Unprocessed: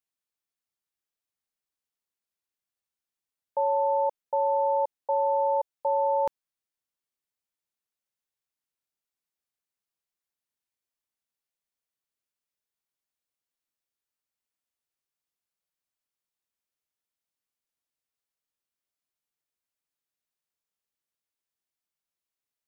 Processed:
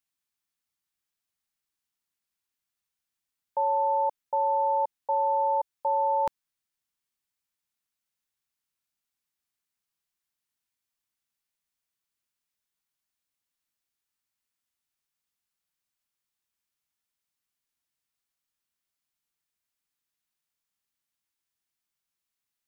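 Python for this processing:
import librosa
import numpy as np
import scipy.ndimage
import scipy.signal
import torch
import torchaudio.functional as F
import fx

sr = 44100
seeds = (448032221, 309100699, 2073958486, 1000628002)

y = fx.peak_eq(x, sr, hz=510.0, db=-8.0, octaves=1.1)
y = F.gain(torch.from_numpy(y), 4.0).numpy()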